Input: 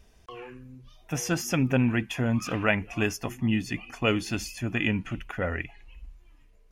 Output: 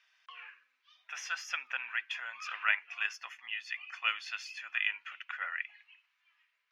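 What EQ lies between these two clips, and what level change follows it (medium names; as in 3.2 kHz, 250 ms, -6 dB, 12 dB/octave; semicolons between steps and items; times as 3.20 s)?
high-pass 1.4 kHz 24 dB/octave; dynamic bell 2.2 kHz, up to -3 dB, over -41 dBFS, Q 0.94; distance through air 240 m; +4.0 dB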